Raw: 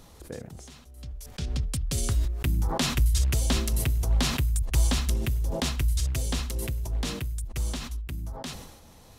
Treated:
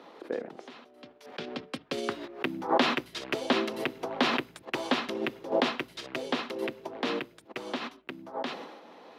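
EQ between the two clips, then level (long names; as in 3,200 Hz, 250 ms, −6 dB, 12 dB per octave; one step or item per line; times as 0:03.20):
high-pass filter 290 Hz 24 dB per octave
high-frequency loss of the air 350 metres
+8.5 dB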